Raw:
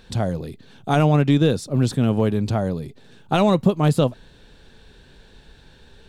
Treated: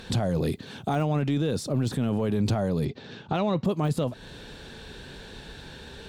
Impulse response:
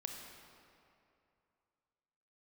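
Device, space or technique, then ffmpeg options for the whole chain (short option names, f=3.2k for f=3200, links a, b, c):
podcast mastering chain: -filter_complex "[0:a]asettb=1/sr,asplit=3[a][b][c];[a]atrim=end=2.854[d];[b]atrim=start=2.85:end=3.65,asetpts=PTS-STARTPTS,afade=t=in:d=0.004:c=qsin,afade=t=out:st=0.796:d=0.004:c=qsin,lowpass=f=5.5k:w=0.5412,lowpass=f=5.5k:w=1.3066[e];[c]atrim=start=3.646[f];[d][e]acrossfade=d=0.004:c1=hsin:c2=qsin[g];[g][f]acrossfade=d=0.004:c1=qsin:c2=hsin,highpass=f=79:p=1,deesser=0.75,acompressor=threshold=-26dB:ratio=4,alimiter=level_in=2dB:limit=-24dB:level=0:latency=1:release=11,volume=-2dB,volume=9dB" -ar 48000 -c:a libmp3lame -b:a 96k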